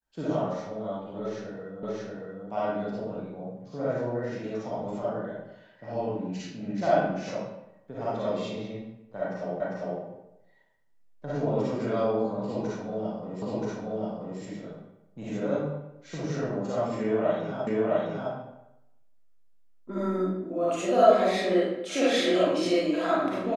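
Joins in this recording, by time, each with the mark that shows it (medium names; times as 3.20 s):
1.83 s: repeat of the last 0.63 s
9.60 s: repeat of the last 0.4 s
13.42 s: repeat of the last 0.98 s
17.67 s: repeat of the last 0.66 s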